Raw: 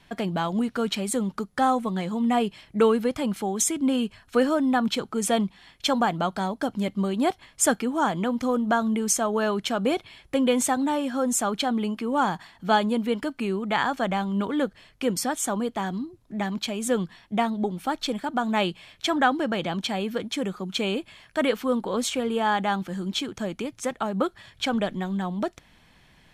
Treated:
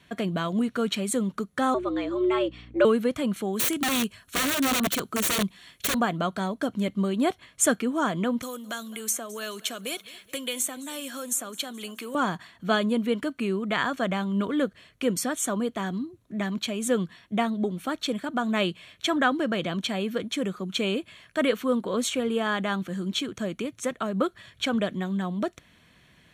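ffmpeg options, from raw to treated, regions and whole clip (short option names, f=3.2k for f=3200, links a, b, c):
-filter_complex "[0:a]asettb=1/sr,asplit=3[a][b][c];[a]atrim=end=1.744[d];[b]atrim=start=1.74:end=2.85,asetpts=PTS-STARTPTS,afade=t=in:d=0.004:c=qsin,afade=t=out:st=1.106:d=0.004:c=qsin,lowpass=4.2k,afreqshift=130,aeval=exprs='val(0)+0.00631*(sin(2*PI*60*n/s)+sin(2*PI*2*60*n/s)/2+sin(2*PI*3*60*n/s)/3+sin(2*PI*4*60*n/s)/4+sin(2*PI*5*60*n/s)/5)':c=same[e];[c]atrim=start=2.846[f];[d][e]acrossfade=d=0.004:c1=hsin:c2=qsin[g];[g][f]acrossfade=d=0.004:c1=qsin:c2=hsin,asettb=1/sr,asplit=3[h][i][j];[h]atrim=end=3.534[k];[i]atrim=start=3.53:end=5.95,asetpts=PTS-STARTPTS,afade=t=in:d=0.004:c=qsin,afade=t=out:st=2.416:d=0.004:c=qsin,highshelf=f=5.6k:g=11.5,aeval=exprs='(mod(8.91*val(0)+1,2)-1)/8.91':c=same[l];[j]atrim=start=5.946[m];[k][l]acrossfade=d=0.004:c1=hsin:c2=qsin[n];[n][m]acrossfade=d=0.004:c1=qsin:c2=hsin,asettb=1/sr,asplit=3[o][p][q];[o]atrim=end=8.424[r];[p]atrim=start=8.42:end=12.15,asetpts=PTS-STARTPTS,afade=t=in:d=0.004:c=qsin,afade=t=out:st=3.726:d=0.004:c=qsin,aemphasis=mode=production:type=bsi,acrossover=split=440|2100[s][t][u];[s]acompressor=threshold=-41dB:ratio=4[v];[t]acompressor=threshold=-39dB:ratio=4[w];[u]acompressor=threshold=-28dB:ratio=4[x];[v][w][x]amix=inputs=3:normalize=0,aecho=1:1:213|426|639|852:0.1|0.051|0.026|0.0133,atrim=end_sample=164493[y];[q]atrim=start=12.146[z];[r][y]acrossfade=d=0.004:c1=hsin:c2=qsin[aa];[aa][z]acrossfade=d=0.004:c1=qsin:c2=hsin,highpass=65,equalizer=f=840:w=7.6:g=-14.5,bandreject=f=5k:w=5.8"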